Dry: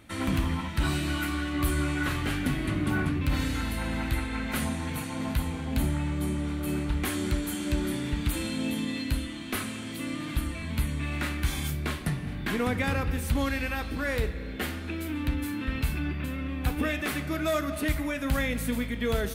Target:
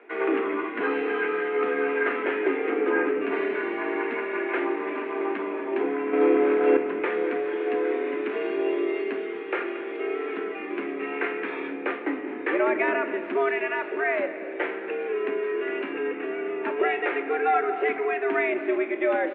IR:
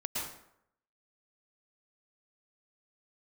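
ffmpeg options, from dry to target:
-filter_complex "[0:a]highpass=f=170:t=q:w=0.5412,highpass=f=170:t=q:w=1.307,lowpass=f=2300:t=q:w=0.5176,lowpass=f=2300:t=q:w=0.7071,lowpass=f=2300:t=q:w=1.932,afreqshift=130,asettb=1/sr,asplit=3[s0][s1][s2];[s0]atrim=end=6.134[s3];[s1]atrim=start=6.13:end=6.77,asetpts=PTS-STARTPTS,afade=t=in:d=0.004:c=qsin,afade=t=out:st=0.636:d=0.004:c=qsin,acontrast=82[s4];[s2]atrim=start=6.766[s5];[s3][s4]acrossfade=d=0.004:c1=hsin:c2=qsin[s6];[s6][s5]acrossfade=d=0.004:c1=qsin:c2=hsin,asplit=4[s7][s8][s9][s10];[s8]adelay=227,afreqshift=-44,volume=0.126[s11];[s9]adelay=454,afreqshift=-88,volume=0.0479[s12];[s10]adelay=681,afreqshift=-132,volume=0.0182[s13];[s7][s11][s12][s13]amix=inputs=4:normalize=0,volume=1.88"

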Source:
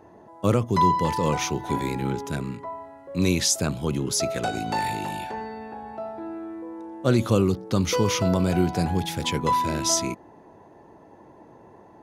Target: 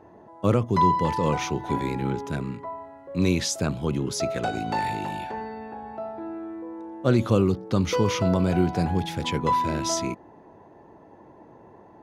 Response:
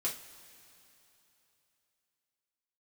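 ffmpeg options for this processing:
-af "highshelf=f=5700:g=-11.5"

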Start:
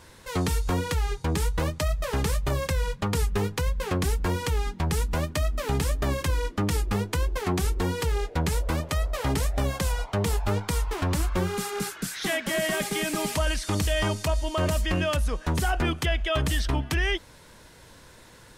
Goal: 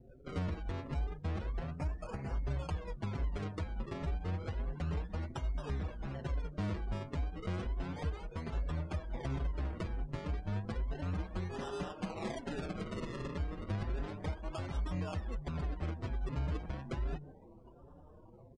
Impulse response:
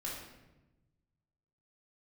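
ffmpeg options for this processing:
-filter_complex "[0:a]asettb=1/sr,asplit=3[s0][s1][s2];[s0]atrim=end=3.114[s3];[s1]atrim=start=3.11:end=4.98,asetpts=PTS-STARTPTS,afade=t=in:d=0.004:c=qsin,afade=t=out:st=1.866:d=0.004:c=qsin,aeval=exprs='val(0)+0.00708*sin(2*PI*4000*n/s)':c=same[s4];[s2]atrim=start=4.976[s5];[s3][s4]acrossfade=d=0.004:c1=hsin:c2=qsin[s6];[s6][s5]acrossfade=d=0.004:c1=qsin:c2=hsin,acrossover=split=250|3000[s7][s8][s9];[s8]acompressor=threshold=0.0158:ratio=8[s10];[s7][s10][s9]amix=inputs=3:normalize=0,acrusher=samples=39:mix=1:aa=0.000001:lfo=1:lforange=39:lforate=0.32,asettb=1/sr,asplit=3[s11][s12][s13];[s11]atrim=end=1.784[s14];[s12]atrim=start=1.78:end=2.35,asetpts=PTS-STARTPTS,afade=t=in:d=0.004:c=qsin,afade=t=out:st=0.566:d=0.004:c=qsin,equalizer=f=3500:t=o:w=0.3:g=-14.5[s15];[s13]atrim=start=2.346[s16];[s14][s15]acrossfade=d=0.004:c1=hsin:c2=qsin[s17];[s17][s16]acrossfade=d=0.004:c1=qsin:c2=hsin,asplit=4[s18][s19][s20][s21];[s19]adelay=160,afreqshift=95,volume=0.106[s22];[s20]adelay=320,afreqshift=190,volume=0.038[s23];[s21]adelay=480,afreqshift=285,volume=0.0138[s24];[s18][s22][s23][s24]amix=inputs=4:normalize=0,acrusher=bits=5:mode=log:mix=0:aa=0.000001,acompressor=threshold=0.0282:ratio=3,afftdn=nr=26:nf=-49,aresample=22050,aresample=44100,asplit=2[s25][s26];[s26]adelay=5.6,afreqshift=1.3[s27];[s25][s27]amix=inputs=2:normalize=1,volume=0.841"

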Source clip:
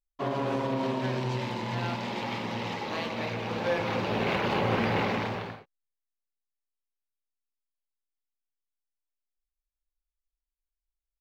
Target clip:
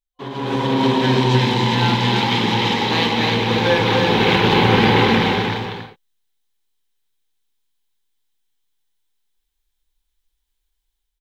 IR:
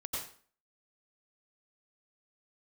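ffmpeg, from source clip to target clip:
-af "superequalizer=8b=0.316:10b=0.631:13b=2,dynaudnorm=f=410:g=3:m=5.62,aecho=1:1:305:0.596,volume=0.891"

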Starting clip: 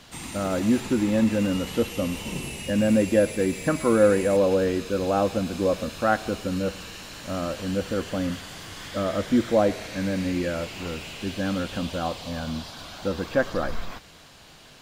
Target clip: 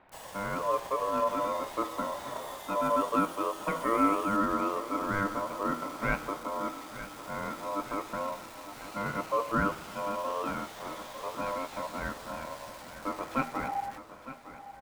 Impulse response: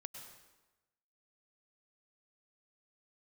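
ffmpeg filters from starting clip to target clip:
-filter_complex "[0:a]bandreject=f=79.59:t=h:w=4,bandreject=f=159.18:t=h:w=4,bandreject=f=238.77:t=h:w=4,bandreject=f=318.36:t=h:w=4,bandreject=f=397.95:t=h:w=4,bandreject=f=477.54:t=h:w=4,bandreject=f=557.13:t=h:w=4,bandreject=f=636.72:t=h:w=4,bandreject=f=716.31:t=h:w=4,bandreject=f=795.9:t=h:w=4,bandreject=f=875.49:t=h:w=4,bandreject=f=955.08:t=h:w=4,bandreject=f=1034.67:t=h:w=4,bandreject=f=1114.26:t=h:w=4,bandreject=f=1193.85:t=h:w=4,bandreject=f=1273.44:t=h:w=4,bandreject=f=1353.03:t=h:w=4,bandreject=f=1432.62:t=h:w=4,bandreject=f=1512.21:t=h:w=4,bandreject=f=1591.8:t=h:w=4,bandreject=f=1671.39:t=h:w=4,bandreject=f=1750.98:t=h:w=4,bandreject=f=1830.57:t=h:w=4,bandreject=f=1910.16:t=h:w=4,bandreject=f=1989.75:t=h:w=4,bandreject=f=2069.34:t=h:w=4,bandreject=f=2148.93:t=h:w=4,bandreject=f=2228.52:t=h:w=4,bandreject=f=2308.11:t=h:w=4,acrossover=split=1800[s0][s1];[s1]acrusher=bits=4:dc=4:mix=0:aa=0.000001[s2];[s0][s2]amix=inputs=2:normalize=0,aeval=exprs='val(0)*sin(2*PI*800*n/s)':c=same,aecho=1:1:908|1816|2724|3632|4540|5448:0.2|0.12|0.0718|0.0431|0.0259|0.0155,volume=0.596"

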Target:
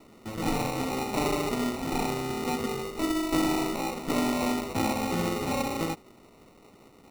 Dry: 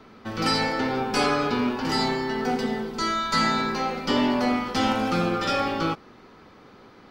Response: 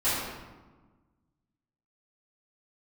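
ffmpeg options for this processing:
-filter_complex "[0:a]asettb=1/sr,asplit=3[s0][s1][s2];[s0]atrim=end=2.664[s3];[s1]atrim=start=2.66:end=3.73,asetpts=PTS-STARTPTS,afade=t=in:d=0.004:c=qsin,afade=t=out:st=1.066:d=0.004:c=qsin,aecho=1:1:2.2:0.54,atrim=end_sample=47187[s4];[s2]atrim=start=3.726[s5];[s3][s4]acrossfade=d=0.004:c1=hsin:c2=qsin[s6];[s6][s5]acrossfade=d=0.004:c1=qsin:c2=hsin,acrusher=samples=27:mix=1:aa=0.000001,volume=0.596"

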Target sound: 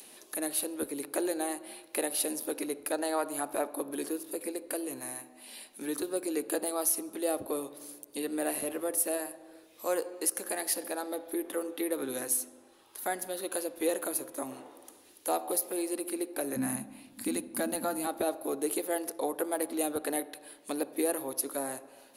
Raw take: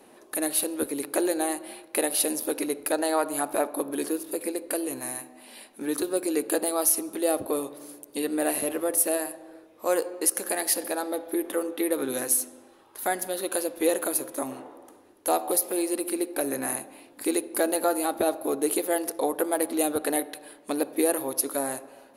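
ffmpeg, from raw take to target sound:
-filter_complex "[0:a]asettb=1/sr,asplit=3[s0][s1][s2];[s0]atrim=end=16.564[s3];[s1]atrim=start=16.56:end=18.07,asetpts=PTS-STARTPTS,afade=t=in:d=0.004:c=qsin,afade=t=out:st=1.506:d=0.004:c=qsin,lowshelf=f=290:t=q:w=3:g=9.5[s4];[s2]atrim=start=18.066[s5];[s3][s4]acrossfade=d=0.004:c1=hsin:c2=qsin[s6];[s6][s5]acrossfade=d=0.004:c1=qsin:c2=hsin,acrossover=split=470|2600[s7][s8][s9];[s9]acompressor=mode=upward:threshold=0.0224:ratio=2.5[s10];[s7][s8][s10]amix=inputs=3:normalize=0,volume=0.501"

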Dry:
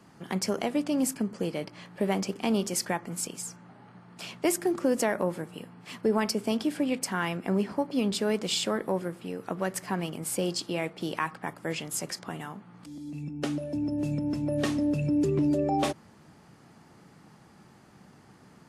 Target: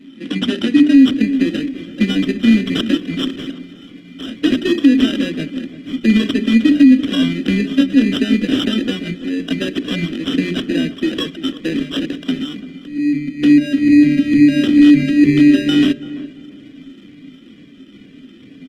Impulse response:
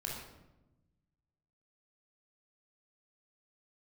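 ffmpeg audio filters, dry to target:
-filter_complex "[0:a]afftfilt=real='re*pow(10,21/40*sin(2*PI*(1.6*log(max(b,1)*sr/1024/100)/log(2)-(-2.2)*(pts-256)/sr)))':imag='im*pow(10,21/40*sin(2*PI*(1.6*log(max(b,1)*sr/1024/100)/log(2)-(-2.2)*(pts-256)/sr)))':win_size=1024:overlap=0.75,asplit=2[s0][s1];[s1]aeval=exprs='(mod(5.31*val(0)+1,2)-1)/5.31':c=same,volume=0.631[s2];[s0][s2]amix=inputs=2:normalize=0,adynamicequalizer=threshold=0.01:dfrequency=1600:dqfactor=1.3:tfrequency=1600:tqfactor=1.3:attack=5:release=100:ratio=0.375:range=2:mode=boostabove:tftype=bell,acrossover=split=220|3000[s3][s4][s5];[s4]acompressor=threshold=0.112:ratio=5[s6];[s3][s6][s5]amix=inputs=3:normalize=0,acrusher=samples=20:mix=1:aa=0.000001,asplit=3[s7][s8][s9];[s7]bandpass=f=270:t=q:w=8,volume=1[s10];[s8]bandpass=f=2290:t=q:w=8,volume=0.501[s11];[s9]bandpass=f=3010:t=q:w=8,volume=0.355[s12];[s10][s11][s12]amix=inputs=3:normalize=0,bandreject=f=60:t=h:w=6,bandreject=f=120:t=h:w=6,bandreject=f=180:t=h:w=6,bandreject=f=240:t=h:w=6,bandreject=f=300:t=h:w=6,bandreject=f=360:t=h:w=6,bandreject=f=420:t=h:w=6,asplit=2[s13][s14];[s14]adelay=339,lowpass=f=1300:p=1,volume=0.2,asplit=2[s15][s16];[s16]adelay=339,lowpass=f=1300:p=1,volume=0.31,asplit=2[s17][s18];[s18]adelay=339,lowpass=f=1300:p=1,volume=0.31[s19];[s15][s17][s19]amix=inputs=3:normalize=0[s20];[s13][s20]amix=inputs=2:normalize=0,alimiter=level_in=10:limit=0.891:release=50:level=0:latency=1,volume=0.891" -ar 48000 -c:a libopus -b:a 20k

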